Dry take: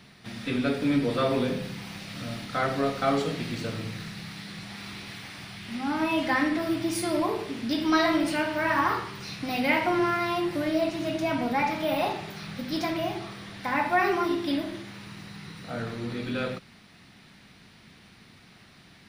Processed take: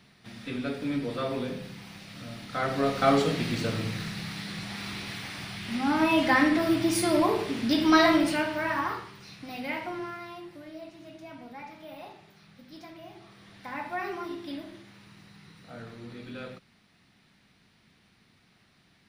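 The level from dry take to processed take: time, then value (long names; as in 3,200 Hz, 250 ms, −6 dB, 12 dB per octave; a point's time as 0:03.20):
0:02.34 −6 dB
0:03.06 +3 dB
0:08.08 +3 dB
0:09.21 −9.5 dB
0:09.80 −9.5 dB
0:10.61 −17.5 dB
0:13.01 −17.5 dB
0:13.53 −10 dB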